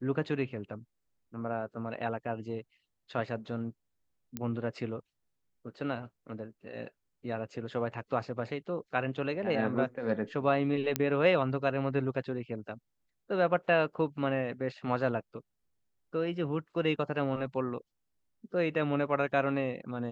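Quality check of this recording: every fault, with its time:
0:04.37: click −20 dBFS
0:10.96: click −11 dBFS

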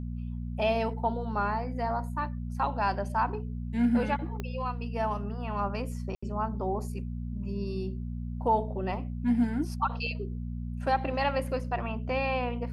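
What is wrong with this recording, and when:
mains hum 60 Hz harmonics 4 −35 dBFS
0:04.40: click −21 dBFS
0:06.15–0:06.22: drop-out 75 ms

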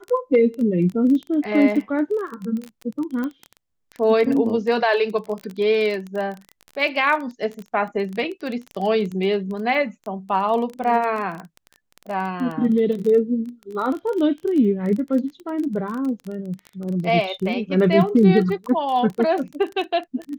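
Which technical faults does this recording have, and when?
surface crackle 20 per second −26 dBFS
0:03.24: click −17 dBFS

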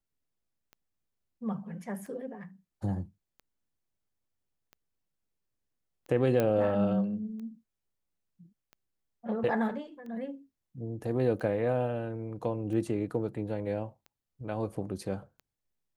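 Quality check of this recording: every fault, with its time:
scratch tick 45 rpm −35 dBFS
0:06.40: click −15 dBFS

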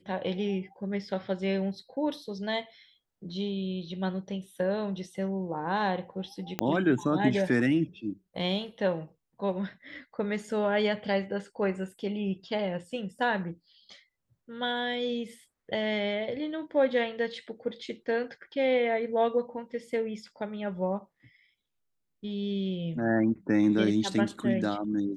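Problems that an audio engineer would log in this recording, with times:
0:06.59: click −13 dBFS

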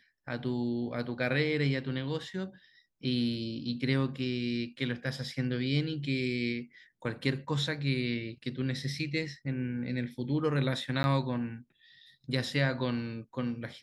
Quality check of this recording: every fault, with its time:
0:11.03–0:11.04: drop-out 11 ms

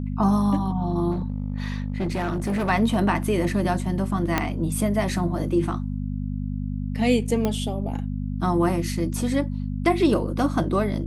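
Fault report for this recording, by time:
mains hum 50 Hz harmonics 5 −28 dBFS
0:01.11–0:02.70: clipping −21.5 dBFS
0:04.38: click −6 dBFS
0:07.45: click −11 dBFS

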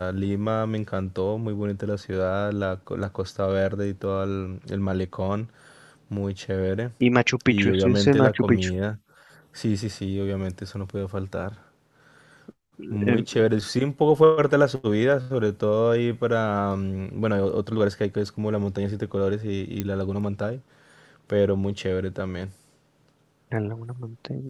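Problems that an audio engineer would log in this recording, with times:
0:19.80: click −13 dBFS

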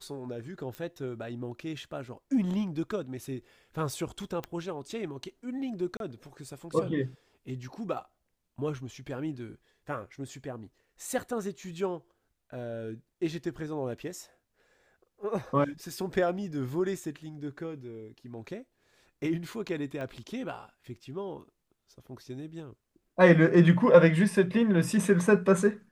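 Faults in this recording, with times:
0:00.75: click −25 dBFS
0:04.44: click −20 dBFS
0:05.97–0:06.00: drop-out 32 ms
0:20.01: click −27 dBFS

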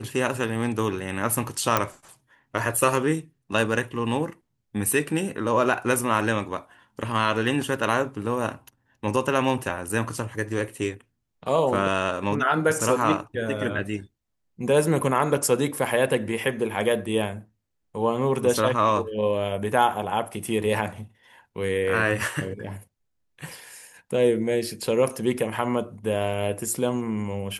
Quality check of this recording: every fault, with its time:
0:01.77: click −5 dBFS

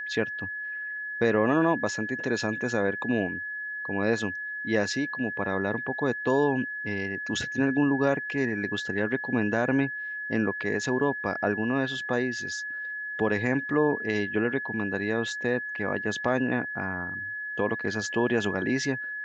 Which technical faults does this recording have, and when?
whistle 1,700 Hz −32 dBFS

